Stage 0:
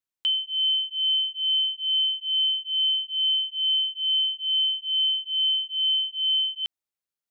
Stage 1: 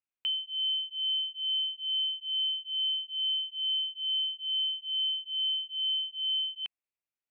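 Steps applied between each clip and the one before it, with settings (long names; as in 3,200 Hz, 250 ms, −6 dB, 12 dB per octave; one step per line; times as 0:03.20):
drawn EQ curve 1,700 Hz 0 dB, 2,600 Hz +6 dB, 3,800 Hz −12 dB
level −5 dB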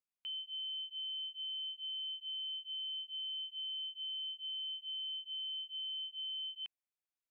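brickwall limiter −32 dBFS, peak gain reduction 8 dB
level −6 dB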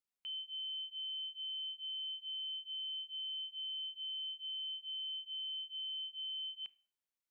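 four-comb reverb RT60 0.43 s, combs from 28 ms, DRR 20 dB
level −1.5 dB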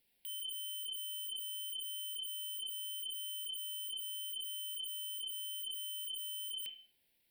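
sine wavefolder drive 15 dB, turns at −38 dBFS
phaser with its sweep stopped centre 2,900 Hz, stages 4
level +1 dB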